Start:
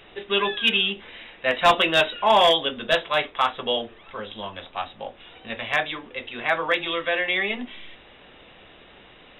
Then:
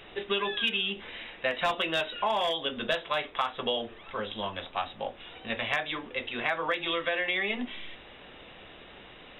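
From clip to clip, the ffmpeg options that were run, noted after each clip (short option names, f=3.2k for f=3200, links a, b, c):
-af "acompressor=threshold=-25dB:ratio=12"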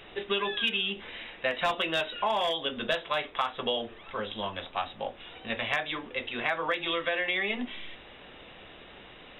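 -af anull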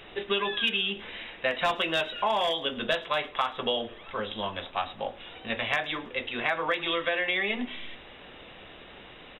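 -af "aecho=1:1:107|214|321:0.0841|0.037|0.0163,volume=1.5dB"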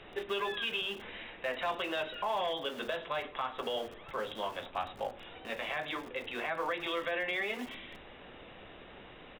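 -filter_complex "[0:a]aemphasis=mode=reproduction:type=75kf,acrossover=split=250[a][b];[a]aeval=exprs='(mod(200*val(0)+1,2)-1)/200':c=same[c];[b]alimiter=limit=-22.5dB:level=0:latency=1:release=86[d];[c][d]amix=inputs=2:normalize=0,volume=-2dB"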